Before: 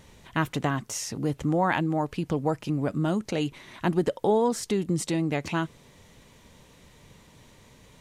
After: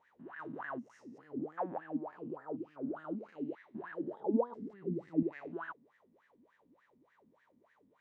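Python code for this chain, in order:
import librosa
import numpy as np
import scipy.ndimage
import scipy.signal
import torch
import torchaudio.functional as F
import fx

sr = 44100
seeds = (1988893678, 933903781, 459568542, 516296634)

y = fx.spec_steps(x, sr, hold_ms=200)
y = fx.wah_lfo(y, sr, hz=3.4, low_hz=230.0, high_hz=1800.0, q=13.0)
y = fx.riaa(y, sr, side='playback', at=(4.2, 5.23))
y = y * 10.0 ** (4.0 / 20.0)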